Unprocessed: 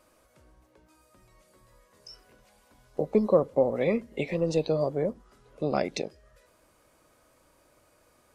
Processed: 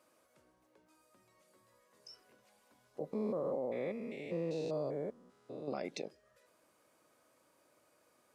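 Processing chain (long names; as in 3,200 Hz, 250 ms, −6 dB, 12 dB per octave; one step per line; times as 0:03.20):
0:03.13–0:05.68: spectrum averaged block by block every 200 ms
high-pass filter 170 Hz 12 dB per octave
brickwall limiter −21.5 dBFS, peak gain reduction 8 dB
level −7 dB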